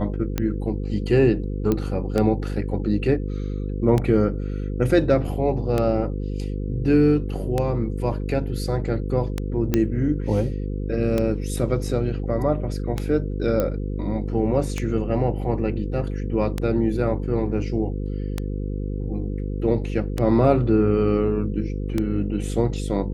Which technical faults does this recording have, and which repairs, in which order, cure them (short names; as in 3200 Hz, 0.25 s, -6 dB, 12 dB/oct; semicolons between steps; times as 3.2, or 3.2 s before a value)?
buzz 50 Hz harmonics 10 -27 dBFS
tick 33 1/3 rpm -10 dBFS
1.72 pop -10 dBFS
9.74 pop -7 dBFS
13.6 pop -10 dBFS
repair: de-click; de-hum 50 Hz, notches 10